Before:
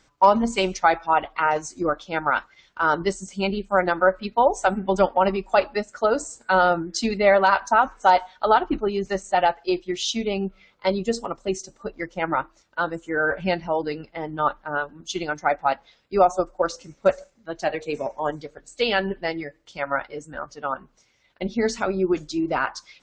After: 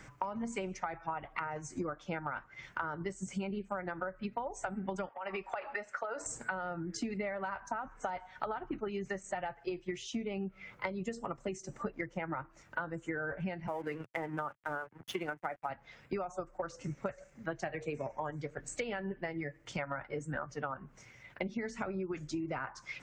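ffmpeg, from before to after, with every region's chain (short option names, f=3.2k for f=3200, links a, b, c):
-filter_complex "[0:a]asettb=1/sr,asplit=3[a][b][c];[a]atrim=end=5.094[d];[b]atrim=start=5.09:end=6.26,asetpts=PTS-STARTPTS,afade=t=in:d=0.004:c=qsin,afade=t=out:st=1.166:d=0.004:c=qsin,acrossover=split=510 4900:gain=0.0891 1 0.158[e][f][g];[e][f][g]amix=inputs=3:normalize=0,bandreject=f=6.8k:w=24,acompressor=threshold=-31dB:ratio=16:attack=3.2:release=140:knee=1:detection=peak[h];[c]atrim=start=6.256[i];[d][h]acrossfade=d=0.004:c1=hsin:c2=qsin[j];[j][i]acrossfade=d=0.004:c1=qsin:c2=hsin,asettb=1/sr,asplit=3[k][l][m];[k]atrim=end=13.674[n];[l]atrim=start=13.67:end=15.7,asetpts=PTS-STARTPTS,afade=t=in:d=0.004:c=qsin,afade=t=out:st=2.026:d=0.004:c=qsin,highpass=240,lowpass=2.9k,aeval=exprs='sgn(val(0))*max(abs(val(0))-0.00501,0)':c=same[o];[m]atrim=start=15.696[p];[n][o]acrossfade=d=0.004:c1=hsin:c2=qsin[q];[q][p]acrossfade=d=0.004:c1=qsin:c2=hsin,acrossover=split=160|1300[r][s][t];[r]acompressor=threshold=-47dB:ratio=4[u];[s]acompressor=threshold=-29dB:ratio=4[v];[t]acompressor=threshold=-38dB:ratio=4[w];[u][v][w]amix=inputs=3:normalize=0,equalizer=f=125:t=o:w=1:g=11,equalizer=f=2k:t=o:w=1:g=7,equalizer=f=4k:t=o:w=1:g=-11,acompressor=threshold=-41dB:ratio=8,volume=6dB"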